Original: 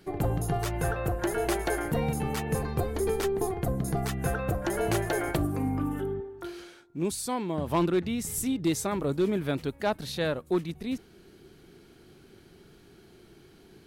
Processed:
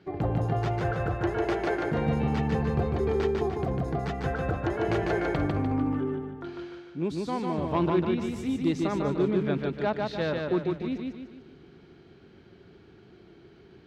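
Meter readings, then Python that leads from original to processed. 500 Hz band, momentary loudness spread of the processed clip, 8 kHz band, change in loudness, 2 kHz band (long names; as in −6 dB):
+1.5 dB, 7 LU, below −15 dB, +1.0 dB, +0.5 dB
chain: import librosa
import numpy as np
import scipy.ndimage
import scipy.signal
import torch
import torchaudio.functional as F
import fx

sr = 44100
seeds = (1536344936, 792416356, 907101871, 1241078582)

y = scipy.signal.sosfilt(scipy.signal.butter(2, 52.0, 'highpass', fs=sr, output='sos'), x)
y = fx.air_absorb(y, sr, metres=200.0)
y = fx.echo_feedback(y, sr, ms=149, feedback_pct=44, wet_db=-3.0)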